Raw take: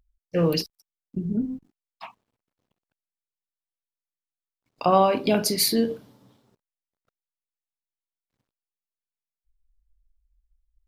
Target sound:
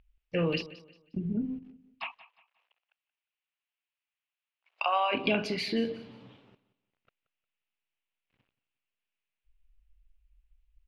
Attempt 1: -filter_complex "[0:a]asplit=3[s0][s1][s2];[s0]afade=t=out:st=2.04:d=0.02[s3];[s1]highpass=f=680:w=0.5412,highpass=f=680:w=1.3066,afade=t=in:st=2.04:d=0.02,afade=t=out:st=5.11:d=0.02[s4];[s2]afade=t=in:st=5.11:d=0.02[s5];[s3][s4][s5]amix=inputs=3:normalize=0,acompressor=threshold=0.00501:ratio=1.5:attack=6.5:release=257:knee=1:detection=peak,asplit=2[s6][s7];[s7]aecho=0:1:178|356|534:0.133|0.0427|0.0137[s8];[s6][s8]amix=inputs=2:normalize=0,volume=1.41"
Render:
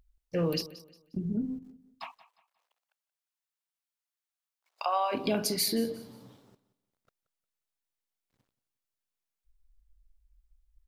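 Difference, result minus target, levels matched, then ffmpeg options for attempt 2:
2 kHz band -9.0 dB
-filter_complex "[0:a]asplit=3[s0][s1][s2];[s0]afade=t=out:st=2.04:d=0.02[s3];[s1]highpass=f=680:w=0.5412,highpass=f=680:w=1.3066,afade=t=in:st=2.04:d=0.02,afade=t=out:st=5.11:d=0.02[s4];[s2]afade=t=in:st=5.11:d=0.02[s5];[s3][s4][s5]amix=inputs=3:normalize=0,acompressor=threshold=0.00501:ratio=1.5:attack=6.5:release=257:knee=1:detection=peak,lowpass=f=2700:t=q:w=3.8,asplit=2[s6][s7];[s7]aecho=0:1:178|356|534:0.133|0.0427|0.0137[s8];[s6][s8]amix=inputs=2:normalize=0,volume=1.41"

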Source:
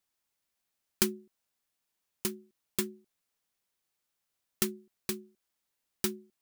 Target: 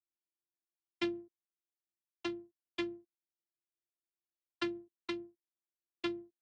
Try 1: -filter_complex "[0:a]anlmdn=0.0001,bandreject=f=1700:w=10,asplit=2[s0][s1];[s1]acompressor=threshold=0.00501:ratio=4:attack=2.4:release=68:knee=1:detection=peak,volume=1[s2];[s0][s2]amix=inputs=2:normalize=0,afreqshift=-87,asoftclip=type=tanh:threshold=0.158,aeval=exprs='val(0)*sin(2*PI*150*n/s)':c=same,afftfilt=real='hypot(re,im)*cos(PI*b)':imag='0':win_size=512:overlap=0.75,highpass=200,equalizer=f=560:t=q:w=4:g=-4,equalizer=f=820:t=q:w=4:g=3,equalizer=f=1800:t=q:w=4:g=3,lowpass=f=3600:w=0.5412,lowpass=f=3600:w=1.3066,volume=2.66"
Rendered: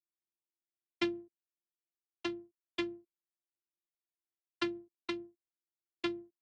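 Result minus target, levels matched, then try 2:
saturation: distortion -7 dB
-filter_complex "[0:a]anlmdn=0.0001,bandreject=f=1700:w=10,asplit=2[s0][s1];[s1]acompressor=threshold=0.00501:ratio=4:attack=2.4:release=68:knee=1:detection=peak,volume=1[s2];[s0][s2]amix=inputs=2:normalize=0,afreqshift=-87,asoftclip=type=tanh:threshold=0.075,aeval=exprs='val(0)*sin(2*PI*150*n/s)':c=same,afftfilt=real='hypot(re,im)*cos(PI*b)':imag='0':win_size=512:overlap=0.75,highpass=200,equalizer=f=560:t=q:w=4:g=-4,equalizer=f=820:t=q:w=4:g=3,equalizer=f=1800:t=q:w=4:g=3,lowpass=f=3600:w=0.5412,lowpass=f=3600:w=1.3066,volume=2.66"

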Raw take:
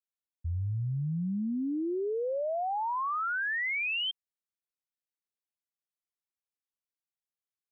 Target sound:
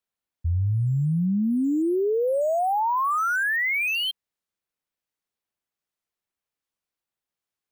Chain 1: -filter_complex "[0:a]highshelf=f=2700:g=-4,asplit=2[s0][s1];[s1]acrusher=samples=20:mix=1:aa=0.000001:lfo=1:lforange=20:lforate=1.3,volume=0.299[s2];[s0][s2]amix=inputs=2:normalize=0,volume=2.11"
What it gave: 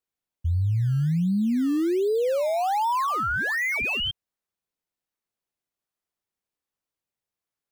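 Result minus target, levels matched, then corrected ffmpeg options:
decimation with a swept rate: distortion +12 dB
-filter_complex "[0:a]highshelf=f=2700:g=-4,asplit=2[s0][s1];[s1]acrusher=samples=4:mix=1:aa=0.000001:lfo=1:lforange=4:lforate=1.3,volume=0.299[s2];[s0][s2]amix=inputs=2:normalize=0,volume=2.11"

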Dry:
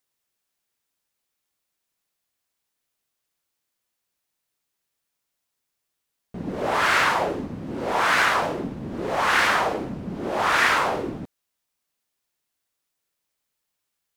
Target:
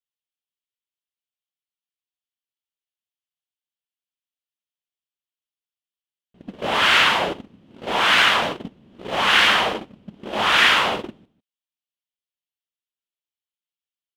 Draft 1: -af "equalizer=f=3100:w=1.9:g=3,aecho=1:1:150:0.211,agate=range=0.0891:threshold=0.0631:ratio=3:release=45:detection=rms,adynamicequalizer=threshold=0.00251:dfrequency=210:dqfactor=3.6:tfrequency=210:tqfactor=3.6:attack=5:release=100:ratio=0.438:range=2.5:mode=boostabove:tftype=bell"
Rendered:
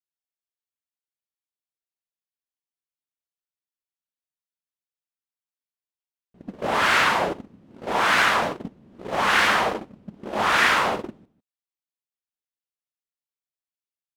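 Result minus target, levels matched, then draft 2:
4 kHz band -5.0 dB
-af "equalizer=f=3100:w=1.9:g=13.5,aecho=1:1:150:0.211,agate=range=0.0891:threshold=0.0631:ratio=3:release=45:detection=rms,adynamicequalizer=threshold=0.00251:dfrequency=210:dqfactor=3.6:tfrequency=210:tqfactor=3.6:attack=5:release=100:ratio=0.438:range=2.5:mode=boostabove:tftype=bell"

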